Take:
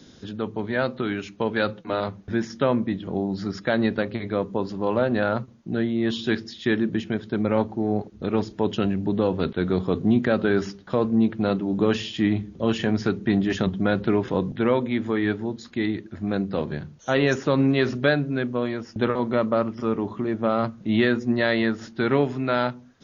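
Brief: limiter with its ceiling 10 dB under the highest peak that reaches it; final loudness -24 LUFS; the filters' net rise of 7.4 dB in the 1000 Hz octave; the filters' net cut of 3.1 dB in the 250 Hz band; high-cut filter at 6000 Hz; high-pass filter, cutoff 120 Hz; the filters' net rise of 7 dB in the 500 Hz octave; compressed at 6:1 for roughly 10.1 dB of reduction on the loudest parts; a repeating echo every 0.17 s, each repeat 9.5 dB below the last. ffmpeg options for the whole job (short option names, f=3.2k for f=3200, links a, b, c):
-af "highpass=120,lowpass=6k,equalizer=f=250:t=o:g=-7,equalizer=f=500:t=o:g=8.5,equalizer=f=1k:t=o:g=7.5,acompressor=threshold=-21dB:ratio=6,alimiter=limit=-17.5dB:level=0:latency=1,aecho=1:1:170|340|510|680:0.335|0.111|0.0365|0.012,volume=5dB"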